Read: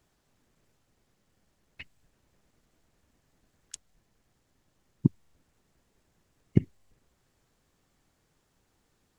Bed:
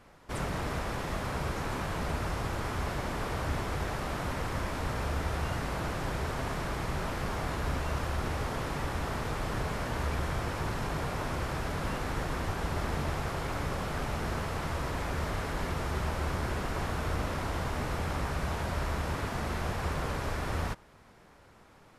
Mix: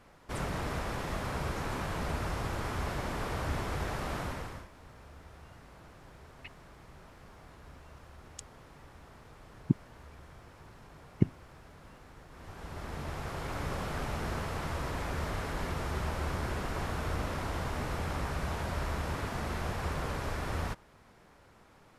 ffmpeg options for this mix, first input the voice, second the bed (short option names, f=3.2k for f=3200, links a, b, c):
-filter_complex "[0:a]adelay=4650,volume=-3.5dB[a];[1:a]volume=16.5dB,afade=t=out:st=4.17:d=0.51:silence=0.11885,afade=t=in:st=12.3:d=1.43:silence=0.125893[b];[a][b]amix=inputs=2:normalize=0"